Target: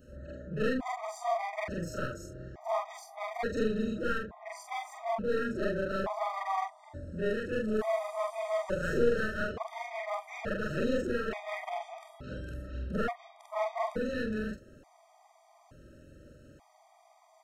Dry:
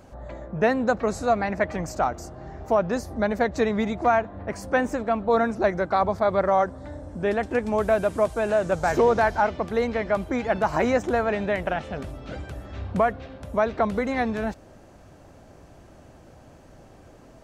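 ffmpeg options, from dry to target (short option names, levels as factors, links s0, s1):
-af "afftfilt=real='re':imag='-im':win_size=4096:overlap=0.75,aeval=exprs='clip(val(0),-1,0.0224)':c=same,afftfilt=real='re*gt(sin(2*PI*0.57*pts/sr)*(1-2*mod(floor(b*sr/1024/630),2)),0)':imag='im*gt(sin(2*PI*0.57*pts/sr)*(1-2*mod(floor(b*sr/1024/630),2)),0)':win_size=1024:overlap=0.75"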